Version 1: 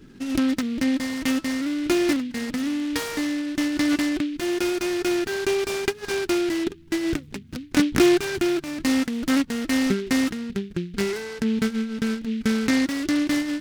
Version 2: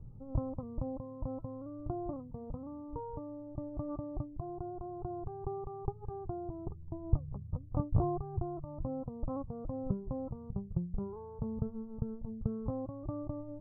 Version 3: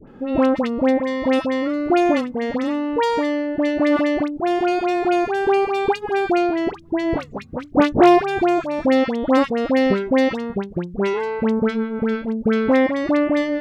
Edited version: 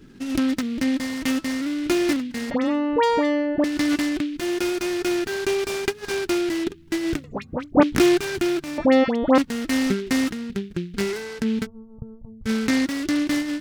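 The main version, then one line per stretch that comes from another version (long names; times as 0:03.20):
1
0:02.51–0:03.64: punch in from 3
0:07.24–0:07.83: punch in from 3
0:08.78–0:09.38: punch in from 3
0:11.64–0:12.47: punch in from 2, crossfade 0.06 s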